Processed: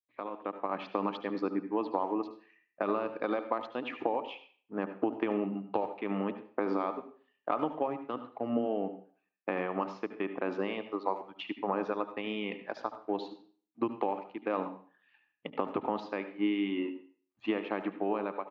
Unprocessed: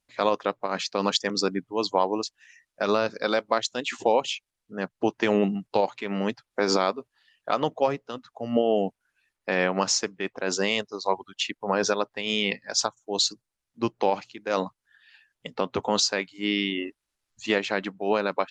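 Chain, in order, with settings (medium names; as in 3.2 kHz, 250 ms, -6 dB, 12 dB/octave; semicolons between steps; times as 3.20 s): companding laws mixed up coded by A; peaking EQ 1.4 kHz -7.5 dB 0.42 oct; compression 5:1, threshold -31 dBFS, peak gain reduction 13 dB; cabinet simulation 150–2500 Hz, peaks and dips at 310 Hz +8 dB, 820 Hz +3 dB, 1.2 kHz +9 dB, 1.9 kHz -4 dB; level rider gain up to 9.5 dB; speakerphone echo 90 ms, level -22 dB; on a send at -10 dB: reverberation RT60 0.45 s, pre-delay 71 ms; on the sum: trim -9 dB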